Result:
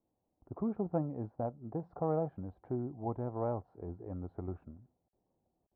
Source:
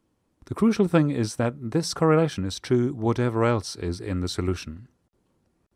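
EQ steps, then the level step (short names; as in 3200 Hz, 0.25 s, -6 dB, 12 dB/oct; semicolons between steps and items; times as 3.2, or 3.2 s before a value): dynamic EQ 400 Hz, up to -4 dB, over -32 dBFS, Q 0.97; ladder low-pass 840 Hz, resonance 60%; -3.0 dB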